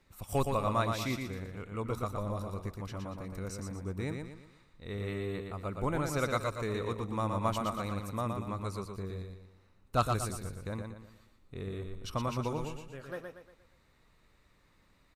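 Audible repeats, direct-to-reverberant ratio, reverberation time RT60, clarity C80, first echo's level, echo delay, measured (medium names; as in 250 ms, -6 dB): 4, no reverb, no reverb, no reverb, -5.0 dB, 118 ms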